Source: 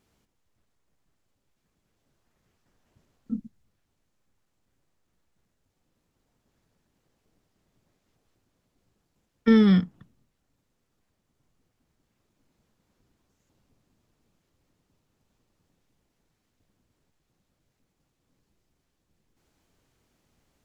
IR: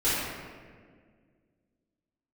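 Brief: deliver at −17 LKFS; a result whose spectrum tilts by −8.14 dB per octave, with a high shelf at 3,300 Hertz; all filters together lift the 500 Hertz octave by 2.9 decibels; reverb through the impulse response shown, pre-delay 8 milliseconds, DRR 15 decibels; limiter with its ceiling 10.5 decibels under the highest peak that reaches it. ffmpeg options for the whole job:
-filter_complex "[0:a]equalizer=frequency=500:width_type=o:gain=3.5,highshelf=frequency=3300:gain=-7,alimiter=limit=-18.5dB:level=0:latency=1,asplit=2[link_01][link_02];[1:a]atrim=start_sample=2205,adelay=8[link_03];[link_02][link_03]afir=irnorm=-1:irlink=0,volume=-28.5dB[link_04];[link_01][link_04]amix=inputs=2:normalize=0,volume=13.5dB"

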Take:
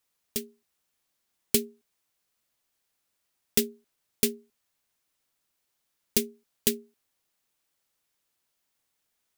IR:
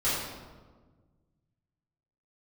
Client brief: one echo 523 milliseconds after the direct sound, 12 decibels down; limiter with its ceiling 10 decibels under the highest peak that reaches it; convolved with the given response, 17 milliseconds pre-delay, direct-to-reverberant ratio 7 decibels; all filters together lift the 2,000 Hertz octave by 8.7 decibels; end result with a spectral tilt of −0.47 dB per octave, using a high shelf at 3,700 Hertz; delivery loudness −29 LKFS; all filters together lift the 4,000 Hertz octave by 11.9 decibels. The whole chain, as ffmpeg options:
-filter_complex "[0:a]equalizer=frequency=2000:width_type=o:gain=5,highshelf=frequency=3700:gain=7,equalizer=frequency=4000:width_type=o:gain=9,alimiter=limit=-8dB:level=0:latency=1,aecho=1:1:523:0.251,asplit=2[link_01][link_02];[1:a]atrim=start_sample=2205,adelay=17[link_03];[link_02][link_03]afir=irnorm=-1:irlink=0,volume=-18dB[link_04];[link_01][link_04]amix=inputs=2:normalize=0,volume=1dB"

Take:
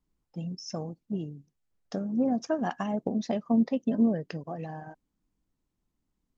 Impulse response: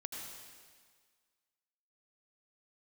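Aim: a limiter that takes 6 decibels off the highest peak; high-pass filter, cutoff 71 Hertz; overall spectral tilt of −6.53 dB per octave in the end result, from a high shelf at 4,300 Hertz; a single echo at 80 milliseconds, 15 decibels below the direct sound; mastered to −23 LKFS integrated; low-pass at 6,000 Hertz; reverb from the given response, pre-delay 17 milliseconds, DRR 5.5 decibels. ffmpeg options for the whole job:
-filter_complex "[0:a]highpass=71,lowpass=6000,highshelf=frequency=4300:gain=4.5,alimiter=limit=-20dB:level=0:latency=1,aecho=1:1:80:0.178,asplit=2[link_01][link_02];[1:a]atrim=start_sample=2205,adelay=17[link_03];[link_02][link_03]afir=irnorm=-1:irlink=0,volume=-4.5dB[link_04];[link_01][link_04]amix=inputs=2:normalize=0,volume=7.5dB"

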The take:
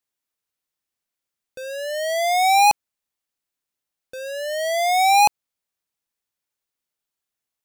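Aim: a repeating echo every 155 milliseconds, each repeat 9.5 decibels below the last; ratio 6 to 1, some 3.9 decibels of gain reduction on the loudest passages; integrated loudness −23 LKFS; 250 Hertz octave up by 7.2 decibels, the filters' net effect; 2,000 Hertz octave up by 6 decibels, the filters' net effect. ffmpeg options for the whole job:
ffmpeg -i in.wav -af "equalizer=frequency=250:width_type=o:gain=9,equalizer=frequency=2000:width_type=o:gain=7,acompressor=threshold=-15dB:ratio=6,aecho=1:1:155|310|465|620:0.335|0.111|0.0365|0.012,volume=-4dB" out.wav

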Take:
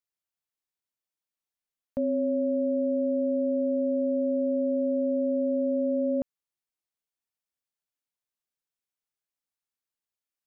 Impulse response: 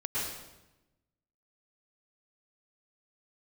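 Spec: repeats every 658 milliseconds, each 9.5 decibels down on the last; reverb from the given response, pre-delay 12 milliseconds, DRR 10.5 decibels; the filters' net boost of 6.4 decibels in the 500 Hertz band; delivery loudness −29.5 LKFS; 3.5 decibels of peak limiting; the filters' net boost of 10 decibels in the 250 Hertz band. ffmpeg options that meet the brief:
-filter_complex "[0:a]equalizer=frequency=250:width_type=o:gain=9,equalizer=frequency=500:width_type=o:gain=5.5,alimiter=limit=-15dB:level=0:latency=1,aecho=1:1:658|1316|1974|2632:0.335|0.111|0.0365|0.012,asplit=2[link_01][link_02];[1:a]atrim=start_sample=2205,adelay=12[link_03];[link_02][link_03]afir=irnorm=-1:irlink=0,volume=-16.5dB[link_04];[link_01][link_04]amix=inputs=2:normalize=0,volume=-9.5dB"

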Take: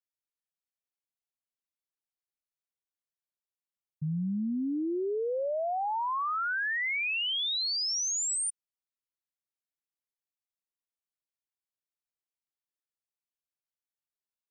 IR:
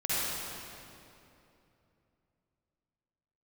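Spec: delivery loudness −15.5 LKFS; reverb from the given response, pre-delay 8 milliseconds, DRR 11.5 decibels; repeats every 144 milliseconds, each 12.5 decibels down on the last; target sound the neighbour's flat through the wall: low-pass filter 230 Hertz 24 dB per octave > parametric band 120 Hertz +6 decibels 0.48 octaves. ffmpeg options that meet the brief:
-filter_complex "[0:a]aecho=1:1:144|288|432:0.237|0.0569|0.0137,asplit=2[link_01][link_02];[1:a]atrim=start_sample=2205,adelay=8[link_03];[link_02][link_03]afir=irnorm=-1:irlink=0,volume=-21.5dB[link_04];[link_01][link_04]amix=inputs=2:normalize=0,lowpass=frequency=230:width=0.5412,lowpass=frequency=230:width=1.3066,equalizer=frequency=120:width_type=o:width=0.48:gain=6,volume=20dB"

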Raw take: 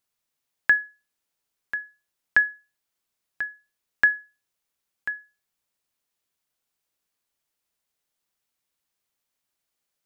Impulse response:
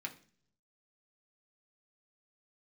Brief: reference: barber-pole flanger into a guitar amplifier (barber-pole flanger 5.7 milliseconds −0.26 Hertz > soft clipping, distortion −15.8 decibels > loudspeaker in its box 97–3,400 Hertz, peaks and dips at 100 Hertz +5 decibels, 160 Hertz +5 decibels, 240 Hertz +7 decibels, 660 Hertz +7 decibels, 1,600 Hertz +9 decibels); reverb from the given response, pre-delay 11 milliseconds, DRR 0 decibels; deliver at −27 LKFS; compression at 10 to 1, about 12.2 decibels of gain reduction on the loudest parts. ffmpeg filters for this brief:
-filter_complex "[0:a]acompressor=threshold=-26dB:ratio=10,asplit=2[link_01][link_02];[1:a]atrim=start_sample=2205,adelay=11[link_03];[link_02][link_03]afir=irnorm=-1:irlink=0,volume=0.5dB[link_04];[link_01][link_04]amix=inputs=2:normalize=0,asplit=2[link_05][link_06];[link_06]adelay=5.7,afreqshift=-0.26[link_07];[link_05][link_07]amix=inputs=2:normalize=1,asoftclip=threshold=-21dB,highpass=97,equalizer=frequency=100:width_type=q:width=4:gain=5,equalizer=frequency=160:width_type=q:width=4:gain=5,equalizer=frequency=240:width_type=q:width=4:gain=7,equalizer=frequency=660:width_type=q:width=4:gain=7,equalizer=frequency=1600:width_type=q:width=4:gain=9,lowpass=frequency=3400:width=0.5412,lowpass=frequency=3400:width=1.3066,volume=5.5dB"

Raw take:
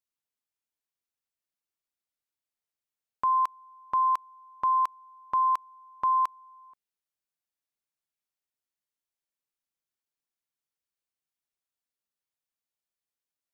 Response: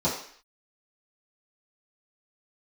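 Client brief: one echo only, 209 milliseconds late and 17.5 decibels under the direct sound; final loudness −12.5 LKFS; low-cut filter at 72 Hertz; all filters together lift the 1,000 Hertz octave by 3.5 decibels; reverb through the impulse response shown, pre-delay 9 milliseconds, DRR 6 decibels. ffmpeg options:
-filter_complex "[0:a]highpass=72,equalizer=frequency=1000:width_type=o:gain=3.5,aecho=1:1:209:0.133,asplit=2[link_01][link_02];[1:a]atrim=start_sample=2205,adelay=9[link_03];[link_02][link_03]afir=irnorm=-1:irlink=0,volume=-18dB[link_04];[link_01][link_04]amix=inputs=2:normalize=0,volume=8.5dB"

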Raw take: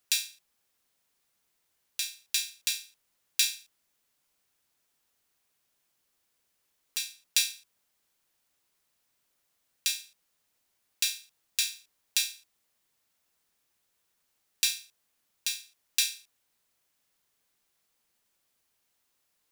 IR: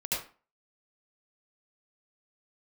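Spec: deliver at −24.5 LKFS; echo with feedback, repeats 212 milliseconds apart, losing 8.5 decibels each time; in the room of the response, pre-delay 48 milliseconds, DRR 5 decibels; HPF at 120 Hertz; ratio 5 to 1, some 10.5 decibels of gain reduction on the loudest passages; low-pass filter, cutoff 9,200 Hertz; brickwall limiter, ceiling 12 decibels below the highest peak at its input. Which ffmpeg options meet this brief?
-filter_complex "[0:a]highpass=120,lowpass=9200,acompressor=threshold=-34dB:ratio=5,alimiter=limit=-23dB:level=0:latency=1,aecho=1:1:212|424|636|848:0.376|0.143|0.0543|0.0206,asplit=2[link_01][link_02];[1:a]atrim=start_sample=2205,adelay=48[link_03];[link_02][link_03]afir=irnorm=-1:irlink=0,volume=-11dB[link_04];[link_01][link_04]amix=inputs=2:normalize=0,volume=19dB"

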